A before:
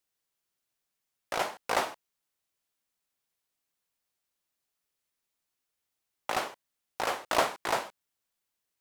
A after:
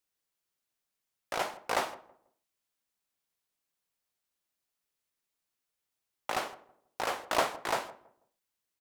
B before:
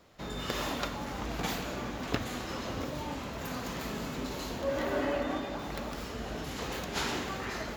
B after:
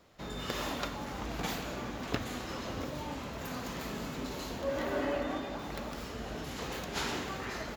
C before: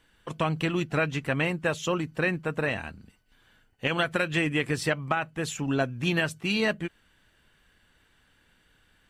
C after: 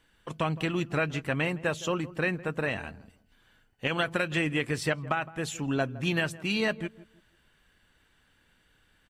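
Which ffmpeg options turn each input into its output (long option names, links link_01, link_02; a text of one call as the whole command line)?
ffmpeg -i in.wav -filter_complex "[0:a]asplit=2[link_01][link_02];[link_02]adelay=163,lowpass=frequency=920:poles=1,volume=-16.5dB,asplit=2[link_03][link_04];[link_04]adelay=163,lowpass=frequency=920:poles=1,volume=0.3,asplit=2[link_05][link_06];[link_06]adelay=163,lowpass=frequency=920:poles=1,volume=0.3[link_07];[link_01][link_03][link_05][link_07]amix=inputs=4:normalize=0,volume=-2dB" out.wav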